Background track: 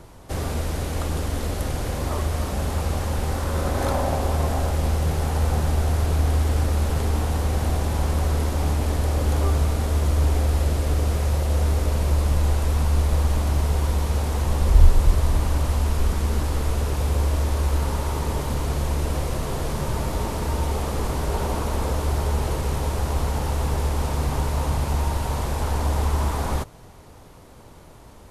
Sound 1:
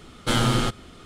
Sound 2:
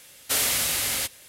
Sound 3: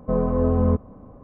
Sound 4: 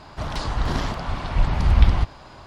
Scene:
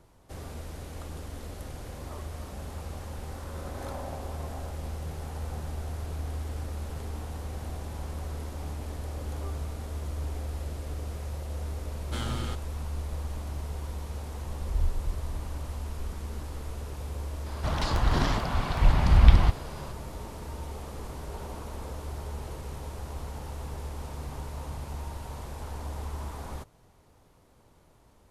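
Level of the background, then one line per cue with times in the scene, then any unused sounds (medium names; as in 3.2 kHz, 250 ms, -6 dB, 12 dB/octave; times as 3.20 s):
background track -14 dB
11.85 s: add 1 -14 dB
17.46 s: add 4 -1 dB + crackling interface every 0.80 s repeat, from 0.49 s
not used: 2, 3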